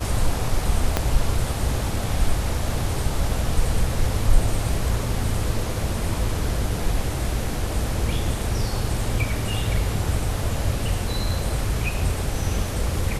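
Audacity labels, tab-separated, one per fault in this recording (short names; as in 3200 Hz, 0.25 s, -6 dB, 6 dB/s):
0.970000	0.970000	pop -5 dBFS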